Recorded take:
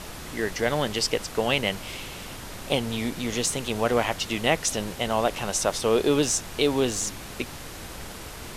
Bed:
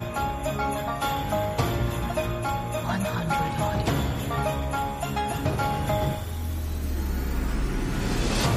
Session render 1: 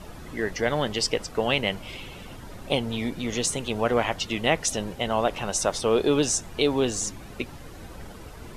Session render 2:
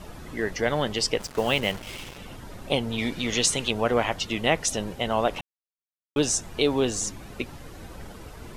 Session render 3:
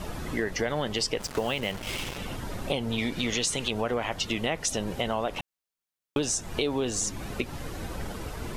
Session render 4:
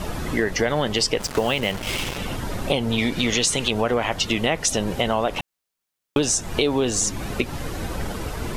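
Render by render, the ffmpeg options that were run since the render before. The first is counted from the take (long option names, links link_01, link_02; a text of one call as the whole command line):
ffmpeg -i in.wav -af "afftdn=noise_reduction=11:noise_floor=-39" out.wav
ffmpeg -i in.wav -filter_complex "[0:a]asettb=1/sr,asplit=3[link_01][link_02][link_03];[link_01]atrim=end=1.204[link_04];[link_02]atrim=start=1.2:end=2.18,asetpts=PTS-STARTPTS,afade=type=in:duration=0.004:curve=qsin,afade=type=out:start_time=0.976:duration=0.004:curve=qsin,acrusher=bits=5:mix=0:aa=0.5[link_05];[link_03]atrim=start=2.176[link_06];[link_04][link_05]acrossfade=duration=0.004:curve1=hsin:curve2=qsin[link_07];[link_07][link_06]acrossfade=duration=0.004:curve1=qsin:curve2=hsin,asettb=1/sr,asplit=3[link_08][link_09][link_10];[link_08]atrim=end=2.984[link_11];[link_09]atrim=start=2.98:end=3.71,asetpts=PTS-STARTPTS,afade=type=in:duration=0.004:curve=qsin,afade=type=out:start_time=0.726:duration=0.004:curve=qsin,equalizer=frequency=3300:width=0.53:gain=7[link_12];[link_10]atrim=start=3.706[link_13];[link_11][link_12]acrossfade=duration=0.004:curve1=hsin:curve2=qsin[link_14];[link_14][link_13]acrossfade=duration=0.004:curve1=qsin:curve2=hsin,asplit=3[link_15][link_16][link_17];[link_15]atrim=end=5.41,asetpts=PTS-STARTPTS,afade=type=out:start_time=5.406:duration=0.004:curve=hsin[link_18];[link_16]atrim=start=5.41:end=6.16,asetpts=PTS-STARTPTS,volume=0[link_19];[link_17]atrim=start=6.16,asetpts=PTS-STARTPTS,afade=type=in:duration=0.004:curve=hsin[link_20];[link_18][link_19][link_20]concat=n=3:v=0:a=1" out.wav
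ffmpeg -i in.wav -filter_complex "[0:a]asplit=2[link_01][link_02];[link_02]alimiter=limit=-16dB:level=0:latency=1:release=26,volume=-0.5dB[link_03];[link_01][link_03]amix=inputs=2:normalize=0,acompressor=threshold=-26dB:ratio=4" out.wav
ffmpeg -i in.wav -af "volume=7dB" out.wav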